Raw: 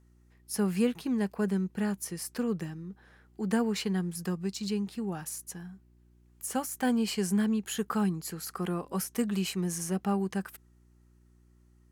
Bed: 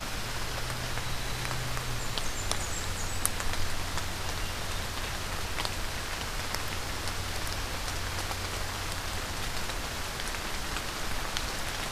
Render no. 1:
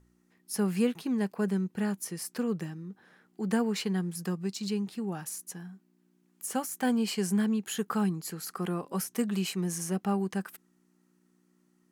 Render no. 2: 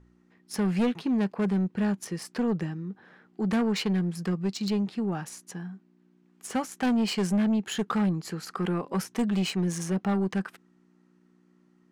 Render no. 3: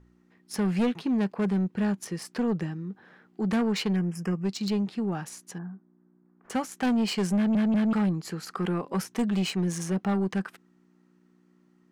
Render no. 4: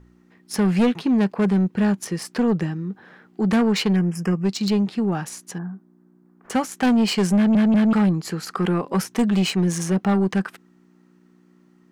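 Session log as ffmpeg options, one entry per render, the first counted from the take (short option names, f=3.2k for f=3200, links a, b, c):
-af "bandreject=f=60:t=h:w=4,bandreject=f=120:t=h:w=4"
-af "adynamicsmooth=sensitivity=5.5:basefreq=4.3k,aeval=exprs='0.15*(cos(1*acos(clip(val(0)/0.15,-1,1)))-cos(1*PI/2))+0.0299*(cos(5*acos(clip(val(0)/0.15,-1,1)))-cos(5*PI/2))':c=same"
-filter_complex "[0:a]asettb=1/sr,asplit=3[a][b][c];[a]atrim=end=3.964[d];[b]atrim=start=3.96:end=4.45,asetpts=PTS-STARTPTS,afade=t=in:d=0.004:c=qsin,afade=t=out:st=0.486:d=0.004:c=qsin,asuperstop=centerf=3900:order=8:qfactor=2[e];[c]atrim=start=4.446[f];[d][e]acrossfade=d=0.004:c1=hsin:c2=qsin[g];[g][f]acrossfade=d=0.004:c1=qsin:c2=hsin,asettb=1/sr,asplit=3[h][i][j];[h]atrim=end=5.584[k];[i]atrim=start=5.58:end=6.5,asetpts=PTS-STARTPTS,afade=t=in:d=0.004:c=qsin,afade=t=out:st=0.916:d=0.004:c=qsin,lowpass=f=1.5k:w=0.5412,lowpass=f=1.5k:w=1.3066[l];[j]atrim=start=6.496[m];[k][l]acrossfade=d=0.004:c1=hsin:c2=qsin[n];[n][m]acrossfade=d=0.004:c1=qsin:c2=hsin,asplit=4[o][p][q][r];[o]atrim=end=7.552[s];[p]atrim=start=7.358:end=7.552[t];[q]atrim=start=7.358:end=7.552[u];[r]atrim=start=7.928[v];[s][t]acrossfade=d=0.004:c1=hsin:c2=hsin[w];[w][u]acrossfade=d=0.004:c1=hsin:c2=hsin[x];[x][v]acrossfade=d=0.004:c1=hsin:c2=hsin"
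-af "volume=7dB"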